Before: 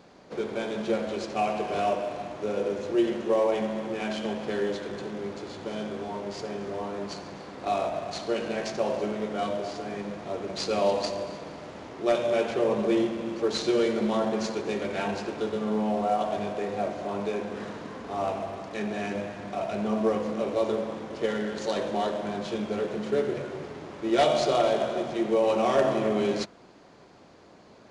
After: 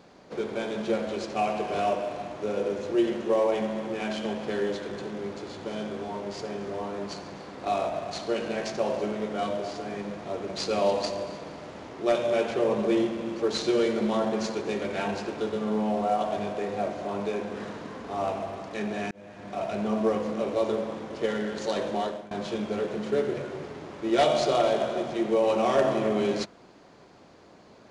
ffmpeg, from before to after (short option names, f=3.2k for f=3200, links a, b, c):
-filter_complex "[0:a]asplit=3[a][b][c];[a]atrim=end=19.11,asetpts=PTS-STARTPTS,afade=t=out:st=19.106:d=0.004:c=hsin[d];[b]atrim=start=19.11:end=22.31,asetpts=PTS-STARTPTS,afade=t=in:d=0.52,afade=t=out:st=2.75:d=0.45:c=qsin:silence=0.0794328[e];[c]atrim=start=22.31,asetpts=PTS-STARTPTS,afade=t=in:d=0.004:c=hsin:silence=0.0794328[f];[d][e][f]concat=n=3:v=0:a=1"